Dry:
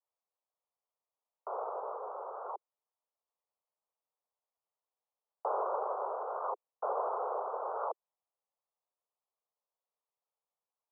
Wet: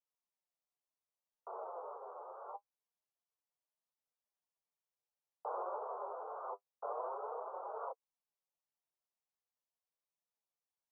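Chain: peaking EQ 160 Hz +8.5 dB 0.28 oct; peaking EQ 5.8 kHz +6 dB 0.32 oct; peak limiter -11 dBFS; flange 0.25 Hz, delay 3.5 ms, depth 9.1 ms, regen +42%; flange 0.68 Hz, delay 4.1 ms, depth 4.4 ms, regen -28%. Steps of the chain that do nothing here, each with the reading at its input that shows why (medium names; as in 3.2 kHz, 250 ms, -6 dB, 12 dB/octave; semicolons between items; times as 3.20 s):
peaking EQ 160 Hz: input has nothing below 320 Hz; peaking EQ 5.8 kHz: input has nothing above 1.5 kHz; peak limiter -11 dBFS: peak at its input -22.0 dBFS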